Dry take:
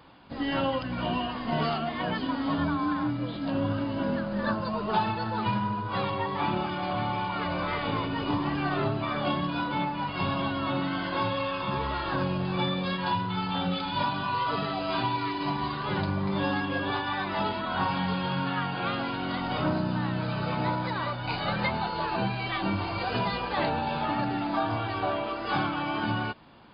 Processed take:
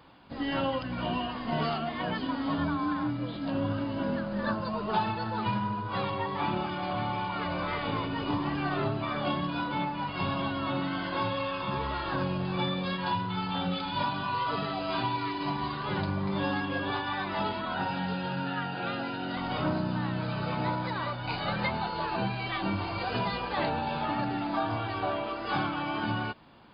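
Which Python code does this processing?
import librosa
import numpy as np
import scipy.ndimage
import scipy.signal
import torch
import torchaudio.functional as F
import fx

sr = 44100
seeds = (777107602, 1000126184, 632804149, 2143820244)

y = fx.notch_comb(x, sr, f0_hz=1100.0, at=(17.74, 19.37))
y = y * 10.0 ** (-2.0 / 20.0)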